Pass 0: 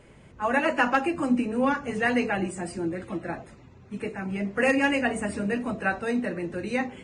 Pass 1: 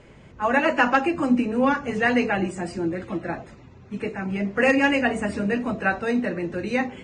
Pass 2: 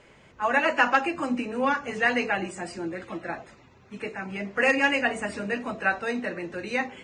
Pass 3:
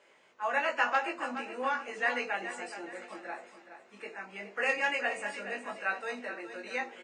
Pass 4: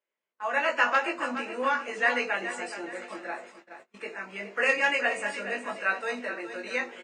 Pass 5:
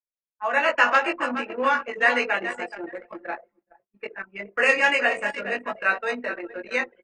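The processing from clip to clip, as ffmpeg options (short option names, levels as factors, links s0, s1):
-af "lowpass=f=7300:w=0.5412,lowpass=f=7300:w=1.3066,volume=1.5"
-af "lowshelf=f=400:g=-11.5"
-filter_complex "[0:a]highpass=430,asplit=2[s0][s1];[s1]adelay=20,volume=0.631[s2];[s0][s2]amix=inputs=2:normalize=0,aecho=1:1:421|842|1263|1684:0.282|0.104|0.0386|0.0143,volume=0.398"
-af "agate=range=0.0562:threshold=0.00224:ratio=16:detection=peak,dynaudnorm=f=350:g=3:m=2.37,bandreject=f=790:w=12,volume=0.794"
-af "anlmdn=6.31,volume=1.78"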